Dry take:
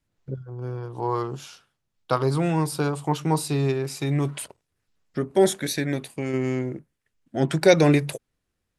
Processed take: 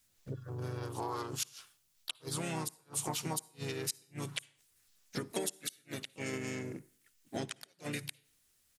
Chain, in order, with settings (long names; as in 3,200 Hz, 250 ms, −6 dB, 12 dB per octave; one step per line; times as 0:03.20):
downward compressor 16 to 1, threshold −31 dBFS, peak gain reduction 21.5 dB
first-order pre-emphasis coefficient 0.9
gate with flip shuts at −36 dBFS, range −38 dB
on a send at −23 dB: convolution reverb RT60 0.55 s, pre-delay 48 ms
on the sum: pitch-shifted copies added −4 semitones −7 dB, +3 semitones −9 dB
level +14 dB